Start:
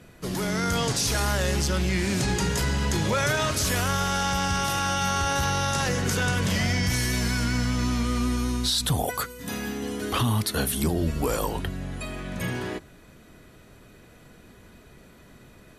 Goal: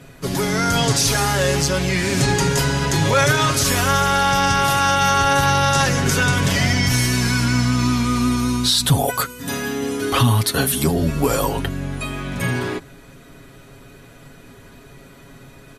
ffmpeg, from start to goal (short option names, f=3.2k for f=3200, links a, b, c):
-af "aecho=1:1:7.3:0.63,volume=6dB"